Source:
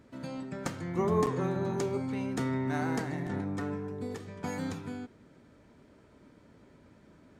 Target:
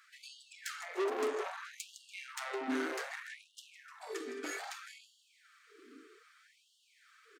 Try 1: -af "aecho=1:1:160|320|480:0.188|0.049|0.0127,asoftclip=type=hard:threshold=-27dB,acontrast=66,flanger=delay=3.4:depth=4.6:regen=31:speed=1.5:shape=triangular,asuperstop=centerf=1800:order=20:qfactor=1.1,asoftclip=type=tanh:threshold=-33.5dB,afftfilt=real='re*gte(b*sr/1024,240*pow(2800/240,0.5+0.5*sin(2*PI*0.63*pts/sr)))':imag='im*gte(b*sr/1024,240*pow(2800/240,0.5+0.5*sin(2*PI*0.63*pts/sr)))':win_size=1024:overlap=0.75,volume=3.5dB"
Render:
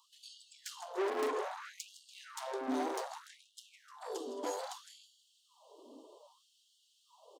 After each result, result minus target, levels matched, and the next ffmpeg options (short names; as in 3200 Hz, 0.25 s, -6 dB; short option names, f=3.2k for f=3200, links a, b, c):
hard clip: distortion +24 dB; 2000 Hz band -7.0 dB
-af "aecho=1:1:160|320|480:0.188|0.049|0.0127,asoftclip=type=hard:threshold=-18dB,acontrast=66,flanger=delay=3.4:depth=4.6:regen=31:speed=1.5:shape=triangular,asuperstop=centerf=1800:order=20:qfactor=1.1,asoftclip=type=tanh:threshold=-33.5dB,afftfilt=real='re*gte(b*sr/1024,240*pow(2800/240,0.5+0.5*sin(2*PI*0.63*pts/sr)))':imag='im*gte(b*sr/1024,240*pow(2800/240,0.5+0.5*sin(2*PI*0.63*pts/sr)))':win_size=1024:overlap=0.75,volume=3.5dB"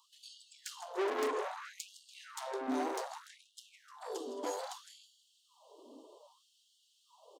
2000 Hz band -6.0 dB
-af "aecho=1:1:160|320|480:0.188|0.049|0.0127,asoftclip=type=hard:threshold=-18dB,acontrast=66,flanger=delay=3.4:depth=4.6:regen=31:speed=1.5:shape=triangular,asuperstop=centerf=720:order=20:qfactor=1.1,asoftclip=type=tanh:threshold=-33.5dB,afftfilt=real='re*gte(b*sr/1024,240*pow(2800/240,0.5+0.5*sin(2*PI*0.63*pts/sr)))':imag='im*gte(b*sr/1024,240*pow(2800/240,0.5+0.5*sin(2*PI*0.63*pts/sr)))':win_size=1024:overlap=0.75,volume=3.5dB"